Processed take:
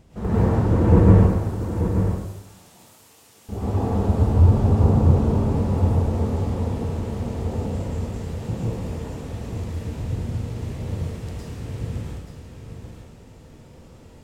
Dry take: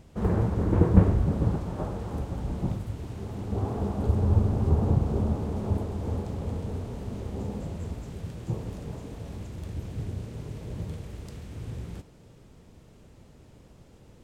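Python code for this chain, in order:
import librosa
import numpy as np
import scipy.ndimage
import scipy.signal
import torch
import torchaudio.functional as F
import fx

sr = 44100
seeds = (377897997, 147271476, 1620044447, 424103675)

y = fx.differentiator(x, sr, at=(1.13, 3.49))
y = y + 10.0 ** (-8.5 / 20.0) * np.pad(y, (int(884 * sr / 1000.0), 0))[:len(y)]
y = fx.rev_plate(y, sr, seeds[0], rt60_s=0.89, hf_ratio=0.9, predelay_ms=95, drr_db=-7.5)
y = y * 10.0 ** (-1.0 / 20.0)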